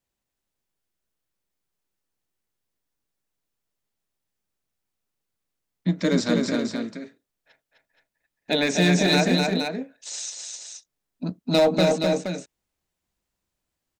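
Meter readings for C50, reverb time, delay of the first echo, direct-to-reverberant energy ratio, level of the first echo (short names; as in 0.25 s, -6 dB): none, none, 0.255 s, none, -3.5 dB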